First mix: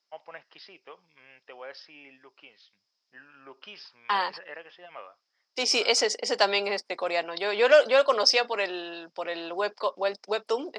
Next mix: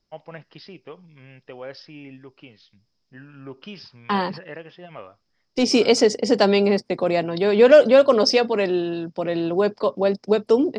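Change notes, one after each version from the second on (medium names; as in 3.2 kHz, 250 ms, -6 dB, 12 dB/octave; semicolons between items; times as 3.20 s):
first voice: add tilt EQ +1.5 dB/octave; master: remove high-pass 820 Hz 12 dB/octave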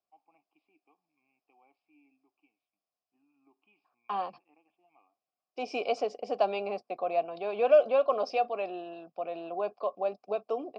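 first voice: add vowel filter u; master: add vowel filter a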